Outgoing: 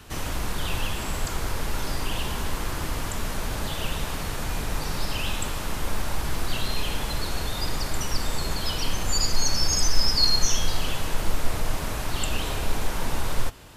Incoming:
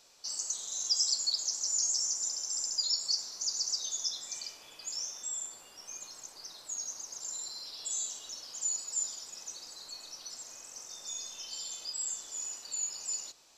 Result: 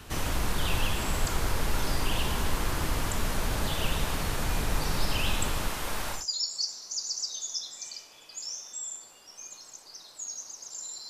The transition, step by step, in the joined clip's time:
outgoing
5.68–6.26 s: bass shelf 330 Hz -9.5 dB
6.18 s: go over to incoming from 2.68 s, crossfade 0.16 s

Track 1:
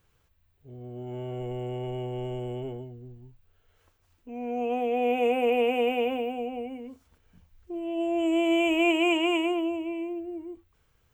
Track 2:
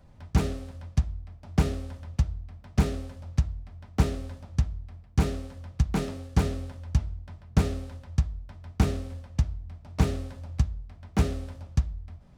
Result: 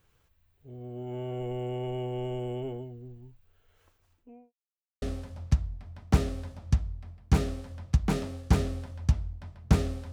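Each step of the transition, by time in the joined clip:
track 1
3.96–4.53 s: studio fade out
4.53–5.02 s: mute
5.02 s: go over to track 2 from 2.88 s

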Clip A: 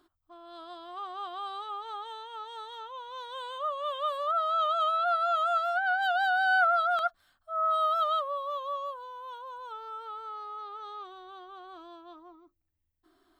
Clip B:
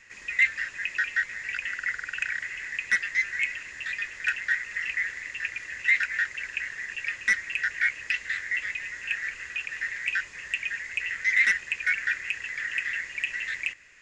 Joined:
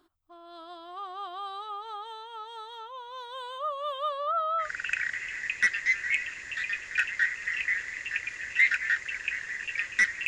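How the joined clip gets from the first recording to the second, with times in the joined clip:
clip A
4.08–4.70 s: low-pass 6.2 kHz -> 1.5 kHz
4.64 s: go over to clip B from 1.93 s, crossfade 0.12 s

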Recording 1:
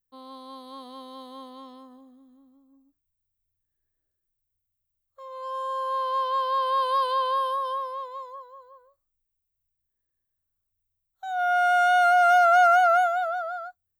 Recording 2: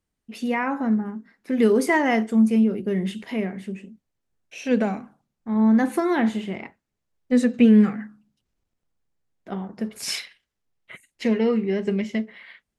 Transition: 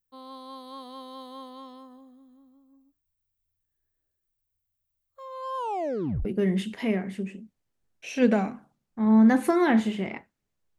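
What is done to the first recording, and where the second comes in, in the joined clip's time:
recording 1
5.57 s: tape stop 0.68 s
6.25 s: go over to recording 2 from 2.74 s

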